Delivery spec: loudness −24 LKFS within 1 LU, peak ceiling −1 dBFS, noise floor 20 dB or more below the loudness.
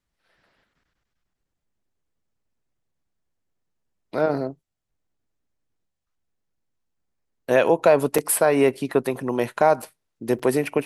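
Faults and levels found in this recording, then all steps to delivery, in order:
number of dropouts 3; longest dropout 4.8 ms; integrated loudness −21.5 LKFS; sample peak −5.0 dBFS; target loudness −24.0 LKFS
→ repair the gap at 0:08.18/0:09.82/0:10.39, 4.8 ms
level −2.5 dB

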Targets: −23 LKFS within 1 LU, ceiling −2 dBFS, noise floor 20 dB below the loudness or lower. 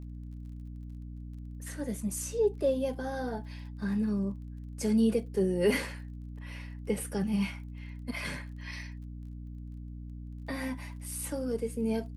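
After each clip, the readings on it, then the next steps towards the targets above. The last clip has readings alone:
crackle rate 30 per second; mains hum 60 Hz; hum harmonics up to 300 Hz; level of the hum −40 dBFS; integrated loudness −33.0 LKFS; sample peak −15.0 dBFS; target loudness −23.0 LKFS
→ click removal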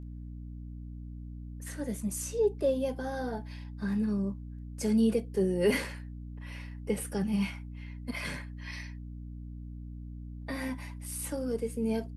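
crackle rate 0.16 per second; mains hum 60 Hz; hum harmonics up to 300 Hz; level of the hum −40 dBFS
→ mains-hum notches 60/120/180/240/300 Hz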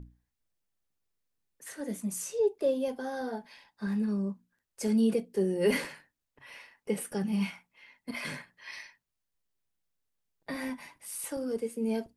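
mains hum none found; integrated loudness −32.5 LKFS; sample peak −15.0 dBFS; target loudness −23.0 LKFS
→ level +9.5 dB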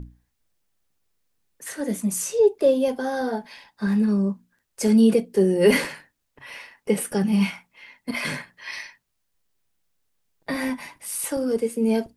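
integrated loudness −23.0 LKFS; sample peak −5.5 dBFS; background noise floor −75 dBFS

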